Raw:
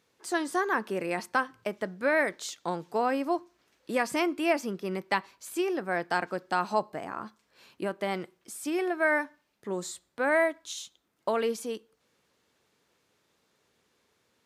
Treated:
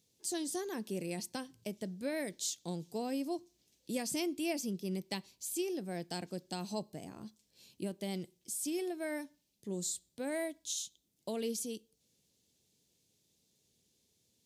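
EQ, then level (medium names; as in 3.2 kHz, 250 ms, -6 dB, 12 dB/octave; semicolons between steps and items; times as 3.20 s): FFT filter 170 Hz 0 dB, 730 Hz -14 dB, 1.3 kHz -26 dB, 3.3 kHz -4 dB, 6.5 kHz +3 dB; 0.0 dB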